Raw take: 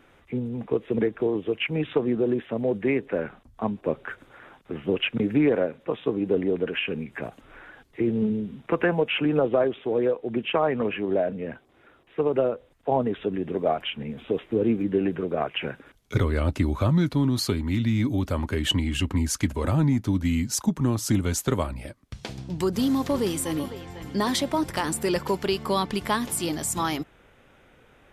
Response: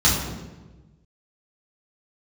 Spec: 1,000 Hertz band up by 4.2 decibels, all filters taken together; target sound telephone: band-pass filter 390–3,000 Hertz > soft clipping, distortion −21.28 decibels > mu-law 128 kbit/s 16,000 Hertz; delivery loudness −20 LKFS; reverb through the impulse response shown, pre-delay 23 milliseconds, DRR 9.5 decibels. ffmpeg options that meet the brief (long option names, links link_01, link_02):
-filter_complex "[0:a]equalizer=frequency=1000:width_type=o:gain=5.5,asplit=2[link_01][link_02];[1:a]atrim=start_sample=2205,adelay=23[link_03];[link_02][link_03]afir=irnorm=-1:irlink=0,volume=-27.5dB[link_04];[link_01][link_04]amix=inputs=2:normalize=0,highpass=390,lowpass=3000,asoftclip=threshold=-12.5dB,volume=8.5dB" -ar 16000 -c:a pcm_mulaw